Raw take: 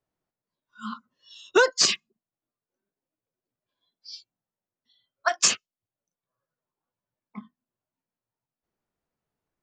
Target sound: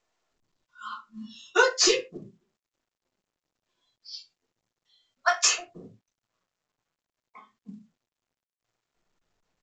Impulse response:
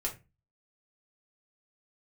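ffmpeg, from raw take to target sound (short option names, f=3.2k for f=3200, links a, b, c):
-filter_complex "[0:a]asplit=3[a][b][c];[a]afade=t=out:st=4.12:d=0.02[d];[b]highshelf=f=2.4k:g=3,afade=t=in:st=4.12:d=0.02,afade=t=out:st=5.37:d=0.02[e];[c]afade=t=in:st=5.37:d=0.02[f];[d][e][f]amix=inputs=3:normalize=0,acrossover=split=430[g][h];[g]adelay=310[i];[i][h]amix=inputs=2:normalize=0[j];[1:a]atrim=start_sample=2205,atrim=end_sample=6615[k];[j][k]afir=irnorm=-1:irlink=0,volume=-2.5dB" -ar 16000 -c:a pcm_mulaw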